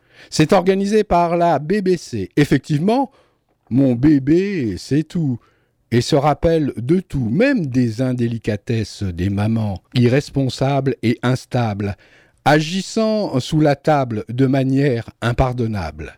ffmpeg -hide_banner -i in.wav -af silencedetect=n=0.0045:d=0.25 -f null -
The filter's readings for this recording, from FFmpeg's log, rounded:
silence_start: 3.26
silence_end: 3.67 | silence_duration: 0.41
silence_start: 5.49
silence_end: 5.91 | silence_duration: 0.42